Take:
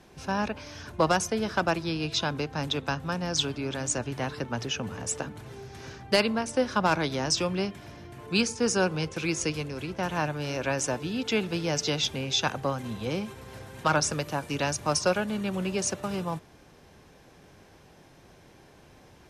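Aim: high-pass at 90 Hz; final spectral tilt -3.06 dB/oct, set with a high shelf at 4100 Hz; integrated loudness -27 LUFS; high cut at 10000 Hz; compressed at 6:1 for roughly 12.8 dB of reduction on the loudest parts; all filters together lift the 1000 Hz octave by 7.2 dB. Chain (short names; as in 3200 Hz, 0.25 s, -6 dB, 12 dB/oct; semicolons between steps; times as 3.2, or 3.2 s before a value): HPF 90 Hz; LPF 10000 Hz; bell 1000 Hz +8.5 dB; high shelf 4100 Hz +9 dB; compressor 6:1, threshold -28 dBFS; gain +5.5 dB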